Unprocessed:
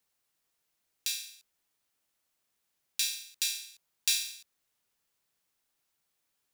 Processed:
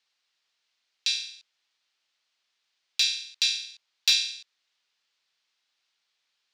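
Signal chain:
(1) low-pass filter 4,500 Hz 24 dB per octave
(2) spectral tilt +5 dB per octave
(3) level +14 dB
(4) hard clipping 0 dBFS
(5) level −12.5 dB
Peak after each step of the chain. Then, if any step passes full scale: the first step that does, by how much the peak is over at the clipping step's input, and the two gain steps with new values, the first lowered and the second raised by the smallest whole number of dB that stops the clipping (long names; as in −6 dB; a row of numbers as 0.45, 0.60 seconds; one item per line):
−16.5, −6.0, +8.0, 0.0, −12.5 dBFS
step 3, 8.0 dB
step 3 +6 dB, step 5 −4.5 dB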